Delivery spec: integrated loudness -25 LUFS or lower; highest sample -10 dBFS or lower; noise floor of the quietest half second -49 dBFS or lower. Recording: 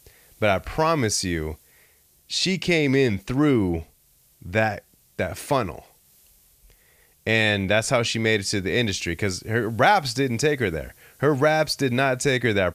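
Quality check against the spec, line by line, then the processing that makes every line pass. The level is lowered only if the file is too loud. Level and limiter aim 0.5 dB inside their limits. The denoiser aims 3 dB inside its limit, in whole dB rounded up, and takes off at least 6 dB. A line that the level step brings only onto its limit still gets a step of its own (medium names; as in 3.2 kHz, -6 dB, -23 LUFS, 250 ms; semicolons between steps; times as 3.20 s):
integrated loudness -22.5 LUFS: fail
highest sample -4.5 dBFS: fail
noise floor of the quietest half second -59 dBFS: pass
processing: trim -3 dB; peak limiter -10.5 dBFS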